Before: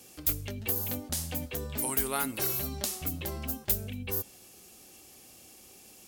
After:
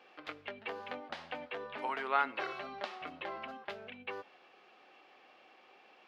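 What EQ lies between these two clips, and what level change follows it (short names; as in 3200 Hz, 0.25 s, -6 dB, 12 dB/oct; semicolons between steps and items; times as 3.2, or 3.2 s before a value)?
HPF 970 Hz 12 dB/oct; air absorption 350 m; tape spacing loss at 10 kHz 29 dB; +12.0 dB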